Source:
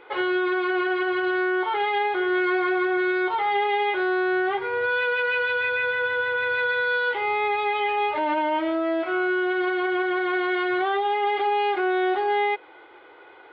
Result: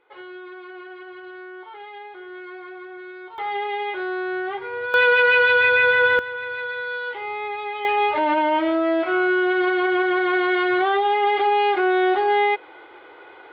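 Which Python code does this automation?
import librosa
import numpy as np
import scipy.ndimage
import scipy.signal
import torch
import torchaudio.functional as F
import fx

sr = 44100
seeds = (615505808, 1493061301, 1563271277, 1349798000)

y = fx.gain(x, sr, db=fx.steps((0.0, -15.0), (3.38, -3.5), (4.94, 8.0), (6.19, -5.0), (7.85, 4.0)))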